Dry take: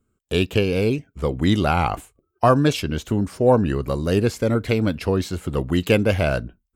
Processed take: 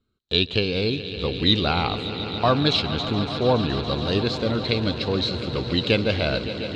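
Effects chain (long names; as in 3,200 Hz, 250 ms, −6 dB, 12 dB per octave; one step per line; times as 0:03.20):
low-pass with resonance 4,000 Hz, resonance Q 9.9
echo that builds up and dies away 141 ms, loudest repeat 5, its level −15 dB
level −4.5 dB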